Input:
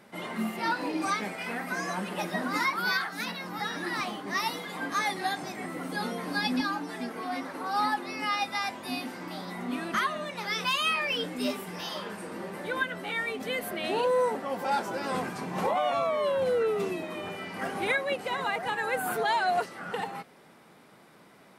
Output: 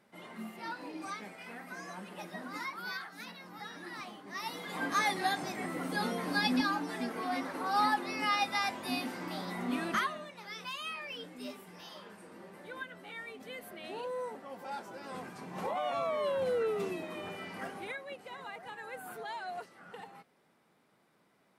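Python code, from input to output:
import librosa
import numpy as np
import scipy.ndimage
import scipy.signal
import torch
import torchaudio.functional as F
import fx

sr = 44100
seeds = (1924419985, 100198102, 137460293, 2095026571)

y = fx.gain(x, sr, db=fx.line((4.33, -12.0), (4.78, -1.0), (9.9, -1.0), (10.35, -13.0), (15.02, -13.0), (16.13, -5.0), (17.53, -5.0), (17.94, -14.5)))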